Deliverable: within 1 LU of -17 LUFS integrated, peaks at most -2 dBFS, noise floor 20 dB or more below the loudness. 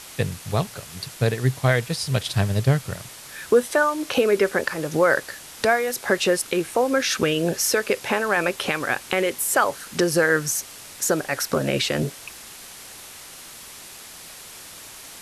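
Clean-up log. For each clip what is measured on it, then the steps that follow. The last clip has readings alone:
noise floor -42 dBFS; noise floor target -43 dBFS; loudness -22.5 LUFS; peak level -6.0 dBFS; loudness target -17.0 LUFS
-> noise reduction 6 dB, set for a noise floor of -42 dBFS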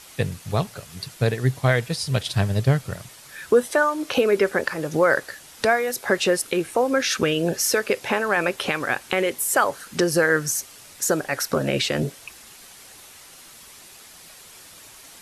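noise floor -46 dBFS; loudness -22.5 LUFS; peak level -6.0 dBFS; loudness target -17.0 LUFS
-> trim +5.5 dB; peak limiter -2 dBFS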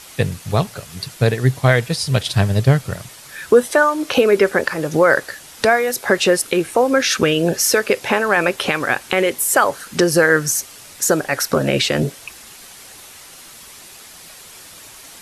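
loudness -17.0 LUFS; peak level -2.0 dBFS; noise floor -41 dBFS

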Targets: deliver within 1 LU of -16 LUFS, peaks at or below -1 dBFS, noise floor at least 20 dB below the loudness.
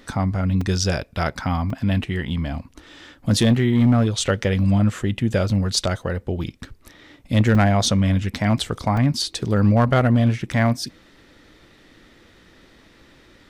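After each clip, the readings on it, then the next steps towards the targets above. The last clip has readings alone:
clipped samples 0.9%; clipping level -9.5 dBFS; dropouts 5; longest dropout 3.3 ms; loudness -20.5 LUFS; peak level -9.5 dBFS; loudness target -16.0 LUFS
-> clip repair -9.5 dBFS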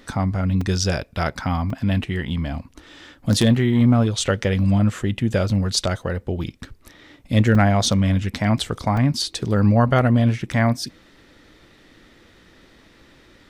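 clipped samples 0.0%; dropouts 5; longest dropout 3.3 ms
-> interpolate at 0.61/1.70/7.55/8.97/10.53 s, 3.3 ms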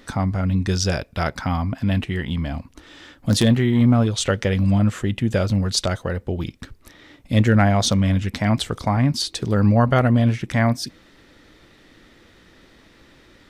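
dropouts 0; loudness -20.5 LUFS; peak level -2.0 dBFS; loudness target -16.0 LUFS
-> trim +4.5 dB; peak limiter -1 dBFS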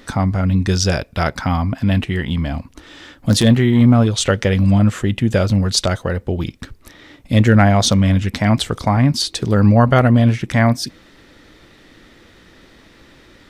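loudness -16.0 LUFS; peak level -1.0 dBFS; noise floor -48 dBFS

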